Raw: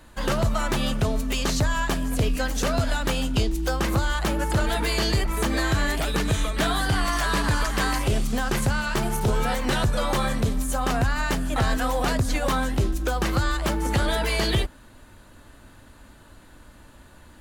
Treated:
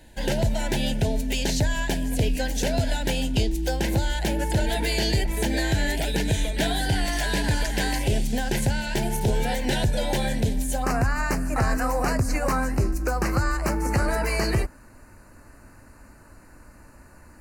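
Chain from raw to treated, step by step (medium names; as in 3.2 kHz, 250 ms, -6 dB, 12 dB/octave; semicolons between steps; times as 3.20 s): Butterworth band-stop 1.2 kHz, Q 1.8, from 10.82 s 3.4 kHz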